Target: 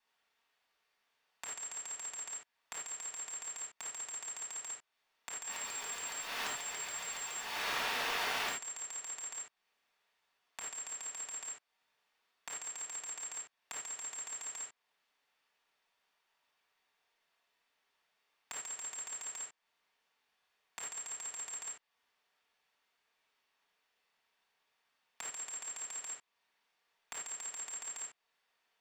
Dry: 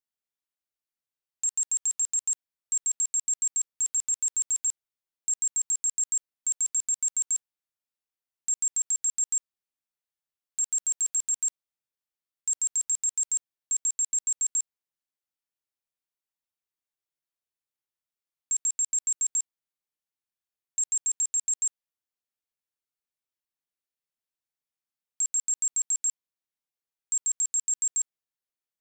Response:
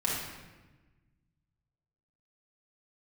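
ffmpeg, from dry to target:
-filter_complex "[0:a]asettb=1/sr,asplit=3[s0][s1][s2];[s0]atrim=end=5.424[s3];[s1]atrim=start=5.42:end=8.49,asetpts=PTS-STARTPTS,afade=t=in:d=0.004:c=qsin,afade=t=out:st=3.066:d=0.004:c=qsin,aeval=exprs='val(0)+0.5*0.0126*sgn(val(0))':c=same[s4];[s2]atrim=start=8.486[s5];[s3][s4]acrossfade=d=0.004:c1=hsin:c2=qsin[s6];[s6][s5]acrossfade=d=0.004:c1=qsin:c2=hsin,acompressor=threshold=0.01:ratio=2.5,acrossover=split=380 4400:gain=0.141 1 0.112[s7][s8][s9];[s7][s8][s9]amix=inputs=3:normalize=0,acrossover=split=3100[s10][s11];[s11]acompressor=threshold=0.00126:ratio=4:attack=1:release=60[s12];[s10][s12]amix=inputs=2:normalize=0[s13];[1:a]atrim=start_sample=2205,atrim=end_sample=4410[s14];[s13][s14]afir=irnorm=-1:irlink=0,volume=5.01"

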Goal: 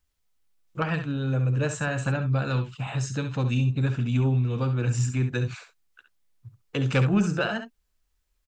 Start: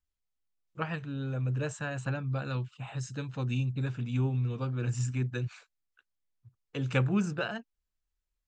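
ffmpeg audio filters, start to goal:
-filter_complex "[0:a]asplit=2[s0][s1];[s1]acompressor=threshold=0.00891:ratio=6,volume=1[s2];[s0][s2]amix=inputs=2:normalize=0,asoftclip=type=tanh:threshold=0.133,aecho=1:1:56|68:0.141|0.335,volume=1.78"

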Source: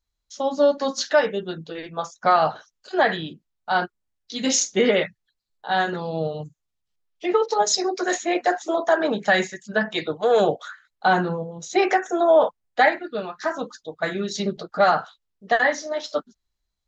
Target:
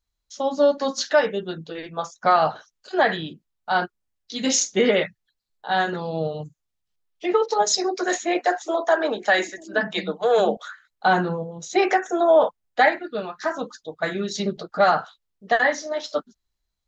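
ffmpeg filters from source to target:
-filter_complex "[0:a]asettb=1/sr,asplit=3[s0][s1][s2];[s0]atrim=end=8.394[s3];[s1]atrim=start=8.39:end=10.57,asetpts=PTS-STARTPTS,afade=t=in:d=0.004:c=qsin,afade=t=out:st=2.176:d=0.004:c=qsin,acrossover=split=250[s4][s5];[s4]adelay=690[s6];[s6][s5]amix=inputs=2:normalize=0,atrim=end_sample=96138[s7];[s2]atrim=start=10.566[s8];[s3][s7]acrossfade=d=0.004:c1=hsin:c2=qsin[s9];[s9][s8]acrossfade=d=0.004:c1=qsin:c2=hsin"

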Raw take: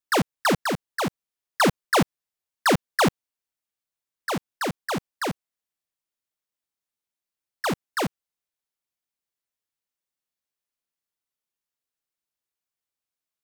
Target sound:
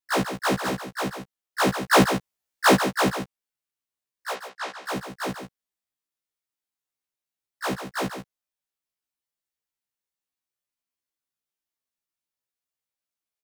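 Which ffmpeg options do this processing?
-filter_complex "[0:a]asettb=1/sr,asplit=3[s0][s1][s2];[s0]atrim=end=1.794[s3];[s1]atrim=start=1.79:end=2.75,asetpts=PTS-STARTPTS,afade=t=in:d=0.004:c=qsin,afade=t=out:st=0.956:d=0.004:c=qsin,acontrast=52[s4];[s2]atrim=start=2.746[s5];[s3][s4]acrossfade=d=0.004:c1=hsin:c2=qsin[s6];[s6][s5]acrossfade=d=0.004:c1=qsin:c2=hsin,asplit=3[s7][s8][s9];[s7]afade=t=out:st=4.33:d=0.02[s10];[s8]highpass=700,lowpass=5900,afade=t=in:st=4.33:d=0.02,afade=t=out:st=4.83:d=0.02[s11];[s9]afade=t=in:st=4.83:d=0.02[s12];[s10][s11][s12]amix=inputs=3:normalize=0,aecho=1:1:141:0.355,afftfilt=real='re*1.73*eq(mod(b,3),0)':imag='im*1.73*eq(mod(b,3),0)':win_size=2048:overlap=0.75"

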